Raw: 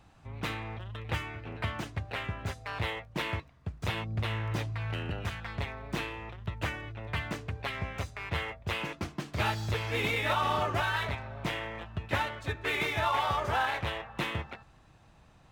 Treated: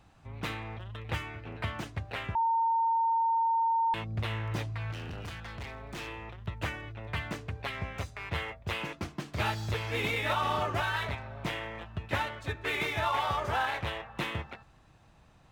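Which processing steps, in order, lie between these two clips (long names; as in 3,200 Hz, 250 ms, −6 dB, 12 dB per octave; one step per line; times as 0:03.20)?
0:02.35–0:03.94: beep over 912 Hz −23 dBFS
0:04.92–0:06.08: hard clipping −36 dBFS, distortion −19 dB
level −1 dB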